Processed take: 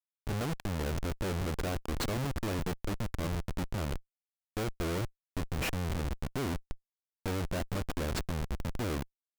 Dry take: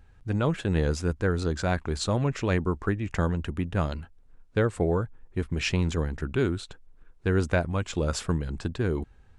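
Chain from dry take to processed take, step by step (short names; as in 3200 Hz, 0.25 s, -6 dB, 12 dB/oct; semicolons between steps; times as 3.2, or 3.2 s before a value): in parallel at -1 dB: compressor 6:1, threshold -40 dBFS, peak gain reduction 19 dB; on the sum: Schmitt trigger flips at -26.5 dBFS; gain -5.5 dB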